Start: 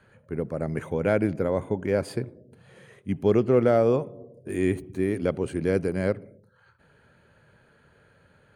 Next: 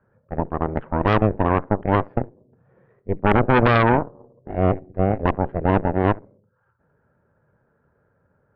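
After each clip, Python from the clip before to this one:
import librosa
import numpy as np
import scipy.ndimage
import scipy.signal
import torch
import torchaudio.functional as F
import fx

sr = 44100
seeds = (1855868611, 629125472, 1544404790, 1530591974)

y = scipy.signal.sosfilt(scipy.signal.butter(4, 1400.0, 'lowpass', fs=sr, output='sos'), x)
y = fx.room_flutter(y, sr, wall_m=11.7, rt60_s=0.23)
y = fx.cheby_harmonics(y, sr, harmonics=(3, 6, 7), levels_db=(-16, -8, -36), full_scale_db=-8.5)
y = y * 10.0 ** (3.0 / 20.0)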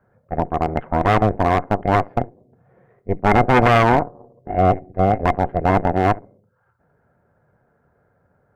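y = fx.small_body(x, sr, hz=(720.0, 2100.0), ring_ms=50, db=11)
y = np.clip(10.0 ** (9.0 / 20.0) * y, -1.0, 1.0) / 10.0 ** (9.0 / 20.0)
y = y * 10.0 ** (2.0 / 20.0)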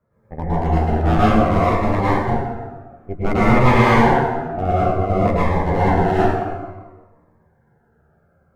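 y = fx.doubler(x, sr, ms=13.0, db=-8.5)
y = fx.rev_plate(y, sr, seeds[0], rt60_s=1.4, hf_ratio=0.65, predelay_ms=95, drr_db=-9.5)
y = fx.notch_cascade(y, sr, direction='falling', hz=0.57)
y = y * 10.0 ** (-7.0 / 20.0)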